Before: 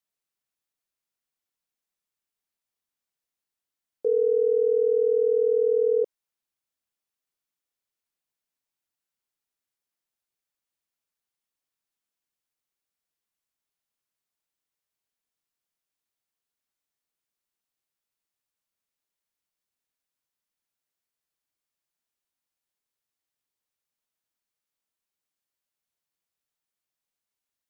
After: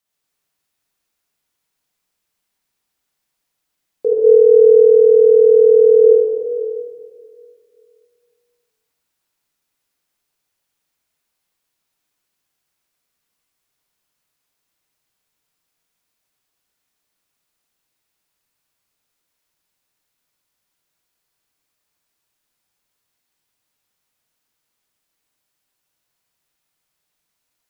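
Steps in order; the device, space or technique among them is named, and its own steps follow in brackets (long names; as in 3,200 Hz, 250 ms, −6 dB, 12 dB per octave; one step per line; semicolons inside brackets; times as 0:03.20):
stairwell (convolution reverb RT60 2.3 s, pre-delay 51 ms, DRR −5.5 dB)
level +7 dB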